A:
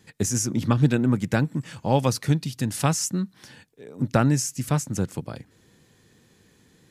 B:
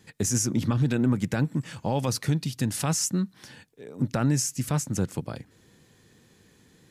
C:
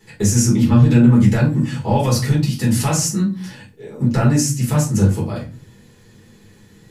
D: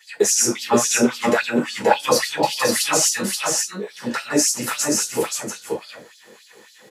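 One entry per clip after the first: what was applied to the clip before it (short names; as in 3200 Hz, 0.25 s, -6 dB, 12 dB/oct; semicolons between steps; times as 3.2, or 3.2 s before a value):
limiter -14.5 dBFS, peak gain reduction 9.5 dB
resonator 120 Hz, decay 0.2 s, harmonics all, mix 50%; shoebox room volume 170 m³, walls furnished, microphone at 4.2 m; gain +3.5 dB
LFO high-pass sine 3.6 Hz 420–4600 Hz; echo 0.528 s -3.5 dB; gain +2.5 dB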